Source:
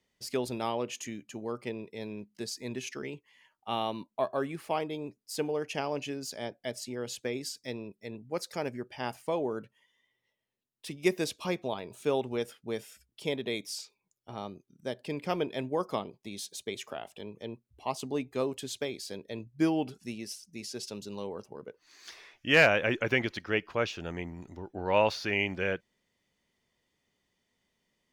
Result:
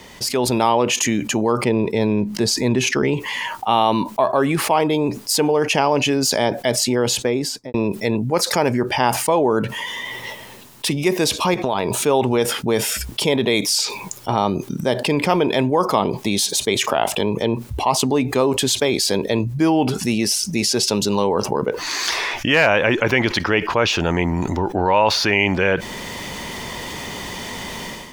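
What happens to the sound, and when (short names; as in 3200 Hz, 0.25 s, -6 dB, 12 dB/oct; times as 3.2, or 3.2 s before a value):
1.64–3.14 tilt -1.5 dB/oct
6.9–7.74 studio fade out
11.54–12.02 compressor, threshold -40 dBFS
whole clip: AGC gain up to 13.5 dB; bell 940 Hz +7 dB 0.52 oct; fast leveller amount 70%; gain -5 dB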